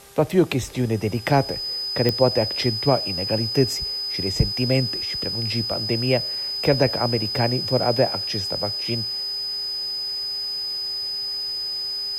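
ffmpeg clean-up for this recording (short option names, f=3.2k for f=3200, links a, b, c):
-af "adeclick=t=4,bandreject=f=398.9:t=h:w=4,bandreject=f=797.8:t=h:w=4,bandreject=f=1.1967k:t=h:w=4,bandreject=f=1.5956k:t=h:w=4,bandreject=f=5k:w=30,afwtdn=0.0045"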